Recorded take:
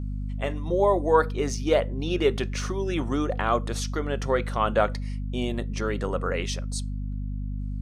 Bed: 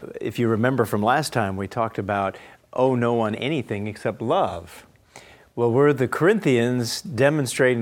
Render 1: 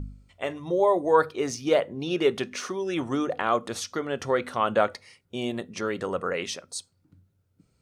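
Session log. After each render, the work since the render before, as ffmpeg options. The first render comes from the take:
-af "bandreject=f=50:t=h:w=4,bandreject=f=100:t=h:w=4,bandreject=f=150:t=h:w=4,bandreject=f=200:t=h:w=4,bandreject=f=250:t=h:w=4"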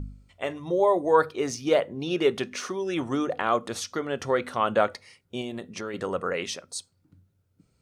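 -filter_complex "[0:a]asettb=1/sr,asplit=3[a][b][c];[a]atrim=end=5.414[d];[b]atrim=start=5.41:end=5.94,asetpts=PTS-STARTPTS,afade=t=in:d=0.004:c=qsin,afade=t=out:st=0.526:d=0.004:c=qsin,acompressor=threshold=-31dB:ratio=3:attack=3.2:release=140:knee=1:detection=peak[e];[c]atrim=start=5.936[f];[d][e]acrossfade=d=0.004:c1=hsin:c2=qsin[g];[g][f]acrossfade=d=0.004:c1=qsin:c2=hsin"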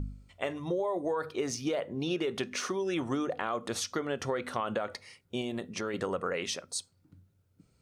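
-af "alimiter=limit=-16dB:level=0:latency=1,acompressor=threshold=-28dB:ratio=6"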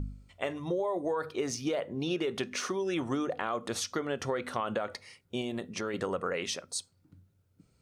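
-af anull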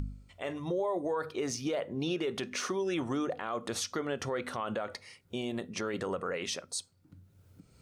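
-af "alimiter=limit=-24dB:level=0:latency=1:release=24,acompressor=mode=upward:threshold=-47dB:ratio=2.5"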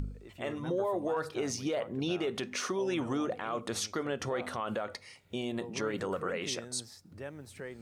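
-filter_complex "[1:a]volume=-25dB[a];[0:a][a]amix=inputs=2:normalize=0"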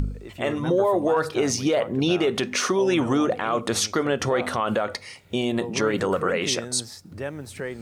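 -af "volume=11dB"

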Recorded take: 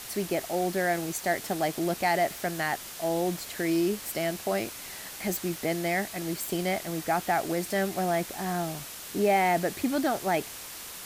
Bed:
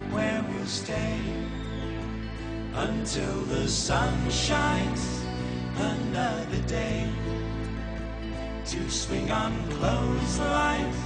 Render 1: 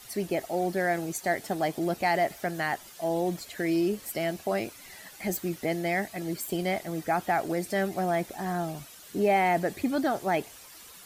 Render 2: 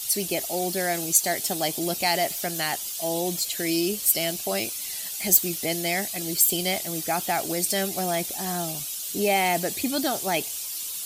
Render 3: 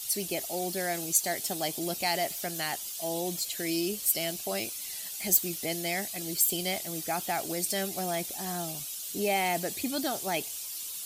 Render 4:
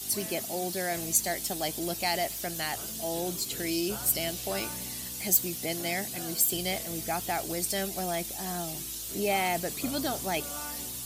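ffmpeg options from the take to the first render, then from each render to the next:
-af "afftdn=nr=11:nf=-42"
-af "aexciter=amount=5.6:drive=3.7:freq=2.6k"
-af "volume=-5.5dB"
-filter_complex "[1:a]volume=-17.5dB[a];[0:a][a]amix=inputs=2:normalize=0"

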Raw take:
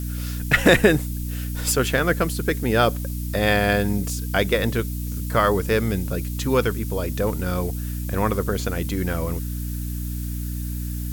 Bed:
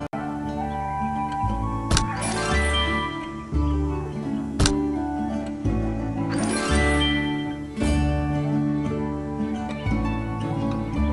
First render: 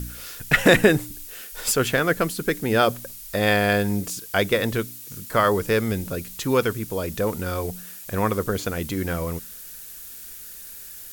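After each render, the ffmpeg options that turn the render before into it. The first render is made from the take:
-af "bandreject=f=60:t=h:w=4,bandreject=f=120:t=h:w=4,bandreject=f=180:t=h:w=4,bandreject=f=240:t=h:w=4,bandreject=f=300:t=h:w=4"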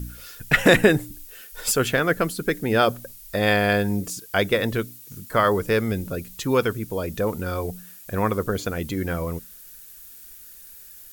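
-af "afftdn=nr=7:nf=-40"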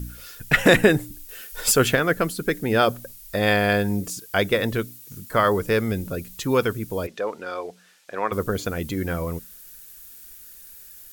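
-filter_complex "[0:a]asplit=3[a][b][c];[a]afade=t=out:st=7.06:d=0.02[d];[b]highpass=450,lowpass=4.8k,afade=t=in:st=7.06:d=0.02,afade=t=out:st=8.31:d=0.02[e];[c]afade=t=in:st=8.31:d=0.02[f];[d][e][f]amix=inputs=3:normalize=0,asplit=3[g][h][i];[g]atrim=end=1.292[j];[h]atrim=start=1.288:end=1.952,asetpts=PTS-STARTPTS,volume=3.5dB[k];[i]atrim=start=1.948[l];[j][k]acrossfade=d=0.004:c1=hsin:c2=hsin[m];[m][l]acrossfade=d=0.004:c1=hsin:c2=hsin"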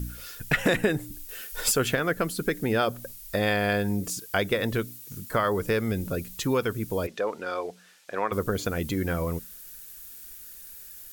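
-af "acompressor=threshold=-23dB:ratio=2.5"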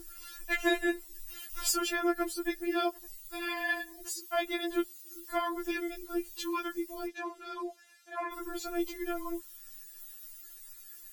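-af "tremolo=f=76:d=0.667,afftfilt=real='re*4*eq(mod(b,16),0)':imag='im*4*eq(mod(b,16),0)':win_size=2048:overlap=0.75"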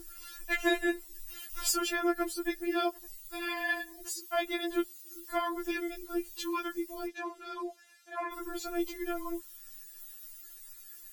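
-af anull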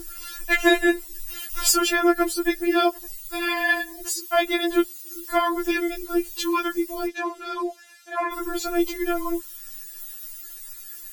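-af "volume=10.5dB"

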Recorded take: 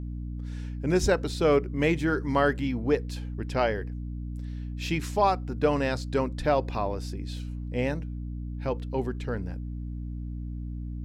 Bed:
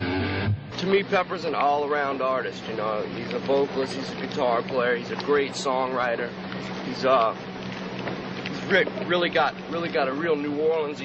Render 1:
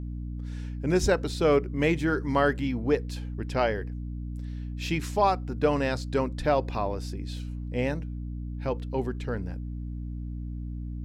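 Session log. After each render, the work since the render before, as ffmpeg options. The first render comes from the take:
-af anull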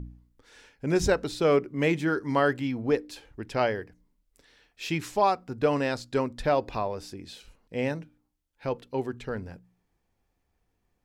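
-af "bandreject=f=60:t=h:w=4,bandreject=f=120:t=h:w=4,bandreject=f=180:t=h:w=4,bandreject=f=240:t=h:w=4,bandreject=f=300:t=h:w=4"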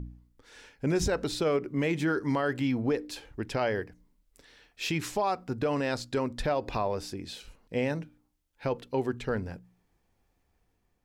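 -af "dynaudnorm=f=160:g=7:m=3dB,alimiter=limit=-19dB:level=0:latency=1:release=82"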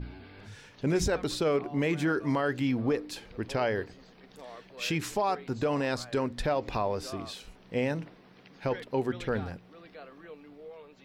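-filter_complex "[1:a]volume=-23.5dB[a];[0:a][a]amix=inputs=2:normalize=0"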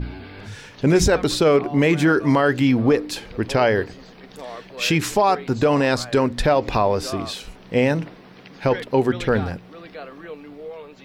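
-af "volume=11dB"

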